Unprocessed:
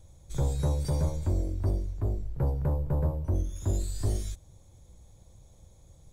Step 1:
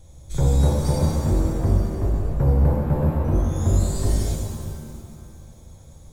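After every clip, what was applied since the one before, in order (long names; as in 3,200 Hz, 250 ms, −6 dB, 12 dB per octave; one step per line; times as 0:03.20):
reverb with rising layers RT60 2.1 s, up +7 semitones, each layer −8 dB, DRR −1 dB
level +5.5 dB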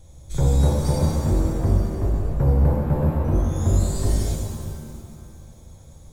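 no processing that can be heard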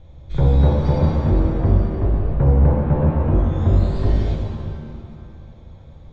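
low-pass filter 3,500 Hz 24 dB per octave
level +3.5 dB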